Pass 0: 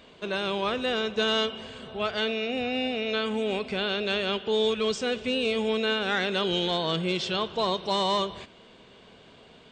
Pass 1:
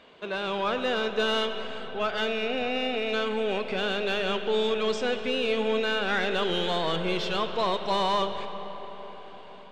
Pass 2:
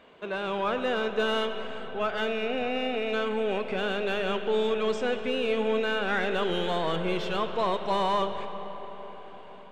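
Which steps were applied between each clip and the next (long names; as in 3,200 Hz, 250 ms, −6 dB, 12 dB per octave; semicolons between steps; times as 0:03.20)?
automatic gain control gain up to 3 dB; mid-hump overdrive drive 11 dB, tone 1,800 Hz, clips at −12.5 dBFS; convolution reverb RT60 5.0 s, pre-delay 50 ms, DRR 9 dB; level −3.5 dB
parametric band 4,600 Hz −8 dB 1.2 octaves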